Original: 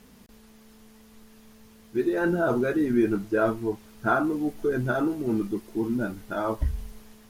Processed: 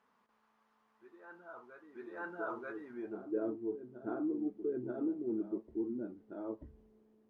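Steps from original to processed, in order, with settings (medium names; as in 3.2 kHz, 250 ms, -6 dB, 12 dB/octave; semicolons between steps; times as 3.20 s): band-pass sweep 1.1 kHz -> 350 Hz, 2.88–3.38 s; reverse echo 936 ms -10.5 dB; trim -7.5 dB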